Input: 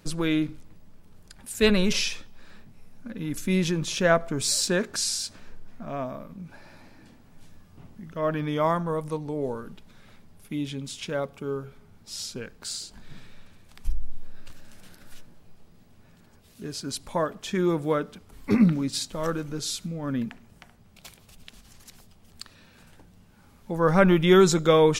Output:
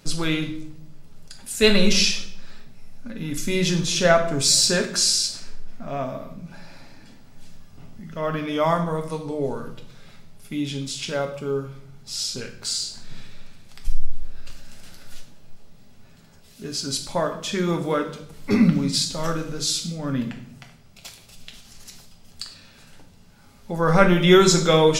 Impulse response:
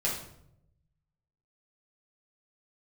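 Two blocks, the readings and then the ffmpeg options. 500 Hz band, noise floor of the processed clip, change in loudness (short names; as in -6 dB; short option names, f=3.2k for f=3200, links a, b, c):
+2.5 dB, -49 dBFS, +4.0 dB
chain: -filter_complex "[0:a]bandreject=f=50:t=h:w=6,bandreject=f=100:t=h:w=6,bandreject=f=150:t=h:w=6,asplit=2[a][b];[b]equalizer=f=5.2k:w=0.53:g=12[c];[1:a]atrim=start_sample=2205[d];[c][d]afir=irnorm=-1:irlink=0,volume=-11dB[e];[a][e]amix=inputs=2:normalize=0"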